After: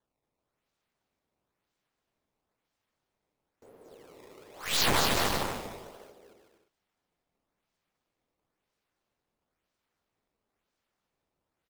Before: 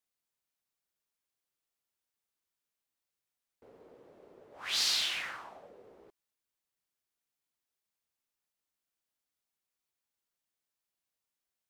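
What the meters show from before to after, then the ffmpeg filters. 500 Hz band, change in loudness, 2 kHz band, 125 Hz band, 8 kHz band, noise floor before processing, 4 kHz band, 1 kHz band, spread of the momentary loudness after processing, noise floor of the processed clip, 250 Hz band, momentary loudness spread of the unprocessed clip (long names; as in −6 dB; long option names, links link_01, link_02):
+17.0 dB, +3.0 dB, +5.5 dB, can't be measured, +4.5 dB, below −85 dBFS, +1.0 dB, +14.5 dB, 18 LU, −85 dBFS, +21.5 dB, 17 LU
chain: -af "acrusher=samples=17:mix=1:aa=0.000001:lfo=1:lforange=27.2:lforate=1,aecho=1:1:230|379.5|476.7|539.8|580.9:0.631|0.398|0.251|0.158|0.1,aeval=exprs='0.133*(cos(1*acos(clip(val(0)/0.133,-1,1)))-cos(1*PI/2))+0.0237*(cos(6*acos(clip(val(0)/0.133,-1,1)))-cos(6*PI/2))':channel_layout=same,volume=2.5dB"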